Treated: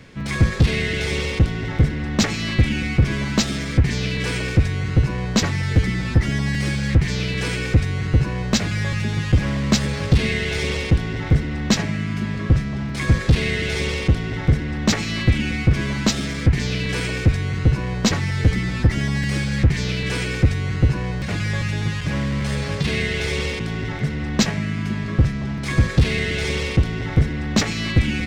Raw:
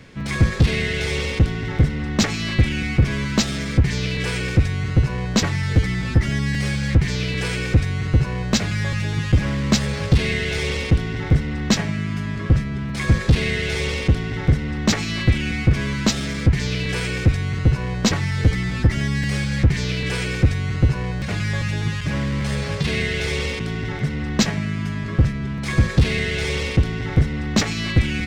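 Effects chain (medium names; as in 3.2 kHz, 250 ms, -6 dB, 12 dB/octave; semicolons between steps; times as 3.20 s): repeats whose band climbs or falls 513 ms, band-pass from 280 Hz, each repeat 1.4 oct, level -9 dB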